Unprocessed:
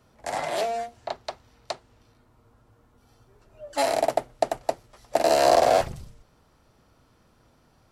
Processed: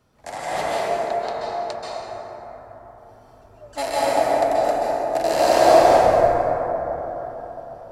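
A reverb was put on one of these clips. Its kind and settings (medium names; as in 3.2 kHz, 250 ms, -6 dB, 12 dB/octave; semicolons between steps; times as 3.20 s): plate-style reverb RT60 4.3 s, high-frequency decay 0.3×, pre-delay 120 ms, DRR -8.5 dB; trim -3 dB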